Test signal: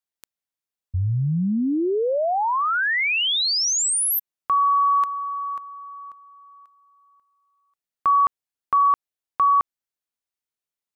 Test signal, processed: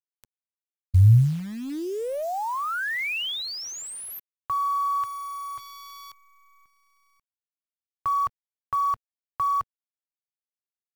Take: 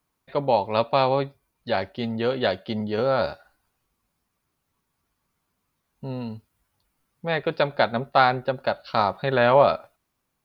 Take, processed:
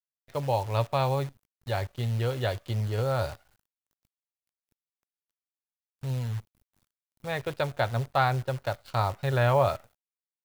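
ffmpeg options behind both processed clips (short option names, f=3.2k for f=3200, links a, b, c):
-filter_complex "[0:a]lowshelf=f=150:t=q:w=3:g=9,acrusher=bits=7:dc=4:mix=0:aa=0.000001,acrossover=split=3400[a][b];[b]acompressor=threshold=-31dB:ratio=4:attack=1:release=60[c];[a][c]amix=inputs=2:normalize=0,volume=-6.5dB"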